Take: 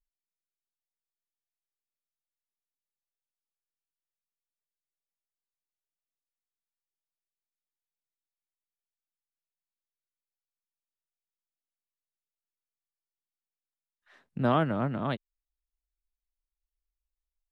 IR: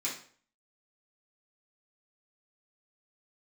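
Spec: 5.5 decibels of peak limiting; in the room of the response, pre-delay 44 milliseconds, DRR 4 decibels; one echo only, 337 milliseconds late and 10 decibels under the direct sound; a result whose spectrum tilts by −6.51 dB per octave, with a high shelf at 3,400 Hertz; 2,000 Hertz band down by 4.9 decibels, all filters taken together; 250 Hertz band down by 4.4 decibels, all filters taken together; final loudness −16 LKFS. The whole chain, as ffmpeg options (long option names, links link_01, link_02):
-filter_complex "[0:a]equalizer=frequency=250:width_type=o:gain=-5.5,equalizer=frequency=2000:width_type=o:gain=-8.5,highshelf=frequency=3400:gain=3.5,alimiter=limit=-20dB:level=0:latency=1,aecho=1:1:337:0.316,asplit=2[link_01][link_02];[1:a]atrim=start_sample=2205,adelay=44[link_03];[link_02][link_03]afir=irnorm=-1:irlink=0,volume=-8dB[link_04];[link_01][link_04]amix=inputs=2:normalize=0,volume=16dB"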